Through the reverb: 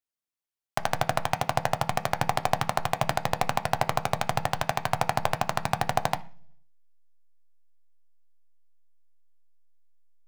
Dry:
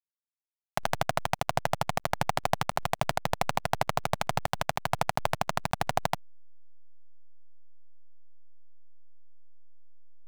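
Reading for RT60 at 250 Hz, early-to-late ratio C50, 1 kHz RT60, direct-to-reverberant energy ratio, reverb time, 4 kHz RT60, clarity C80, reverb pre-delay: 0.70 s, 19.0 dB, 0.40 s, 9.0 dB, 0.45 s, 0.55 s, 24.0 dB, 3 ms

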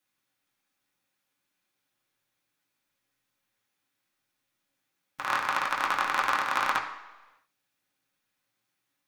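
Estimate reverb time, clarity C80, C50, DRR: non-exponential decay, 10.5 dB, 7.5 dB, −3.0 dB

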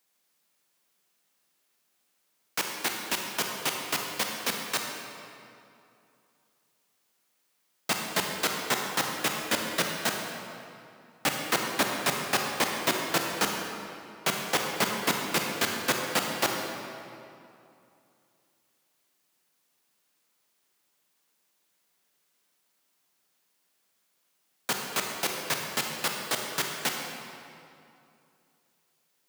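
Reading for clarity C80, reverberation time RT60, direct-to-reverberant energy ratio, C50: 3.5 dB, 2.6 s, 1.5 dB, 2.0 dB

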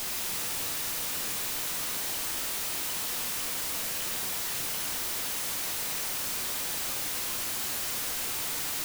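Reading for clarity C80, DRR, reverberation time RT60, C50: 7.0 dB, 2.5 dB, 1.3 s, 5.5 dB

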